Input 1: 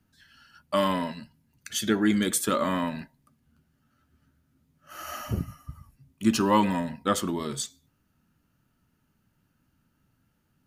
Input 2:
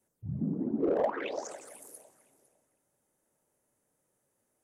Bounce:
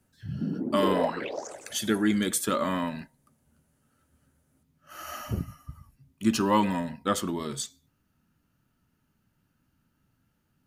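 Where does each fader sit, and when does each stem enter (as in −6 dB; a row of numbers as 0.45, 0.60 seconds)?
−1.5, +1.5 decibels; 0.00, 0.00 seconds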